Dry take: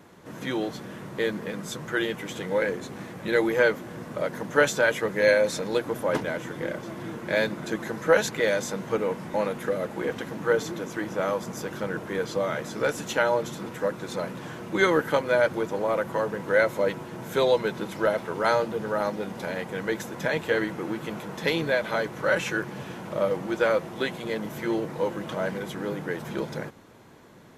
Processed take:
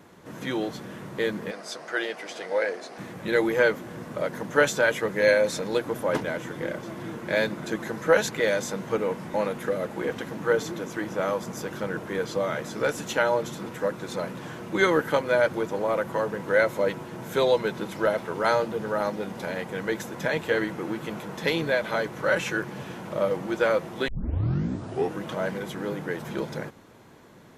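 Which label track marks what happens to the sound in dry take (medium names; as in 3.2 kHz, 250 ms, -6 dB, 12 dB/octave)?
1.510000	2.980000	cabinet simulation 450–10000 Hz, peaks and dips at 680 Hz +9 dB, 990 Hz -3 dB, 3.4 kHz -4 dB, 4.8 kHz +8 dB, 7.3 kHz -6 dB
24.080000	24.080000	tape start 1.13 s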